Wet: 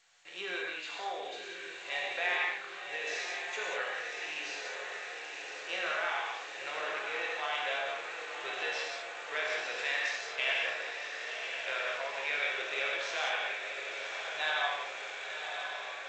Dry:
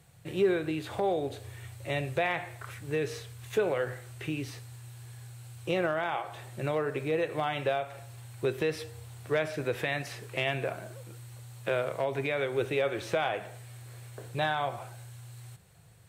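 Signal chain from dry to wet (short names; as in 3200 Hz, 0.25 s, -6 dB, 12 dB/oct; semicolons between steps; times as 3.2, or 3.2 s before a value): 10.17–11.27 gate -32 dBFS, range -25 dB; HPF 1300 Hz 12 dB/oct; 2.43–2.89 air absorption 140 m; diffused feedback echo 1.049 s, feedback 73%, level -6.5 dB; non-linear reverb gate 0.23 s flat, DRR -3 dB; gain -1 dB; G.722 64 kbps 16000 Hz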